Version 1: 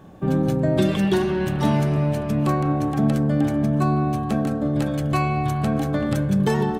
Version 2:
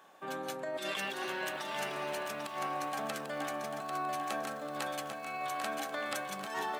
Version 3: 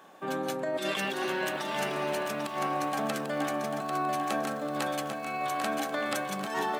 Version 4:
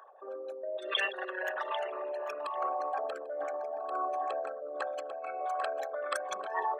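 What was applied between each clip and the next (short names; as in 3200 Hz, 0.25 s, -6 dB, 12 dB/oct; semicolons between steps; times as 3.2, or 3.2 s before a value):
HPF 950 Hz 12 dB/oct; negative-ratio compressor -33 dBFS, ratio -0.5; lo-fi delay 0.794 s, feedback 35%, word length 9-bit, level -6 dB; gain -3.5 dB
bell 220 Hz +6.5 dB 2.3 oct; gain +4 dB
formant sharpening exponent 3; HPF 1100 Hz 12 dB/oct; gain +6 dB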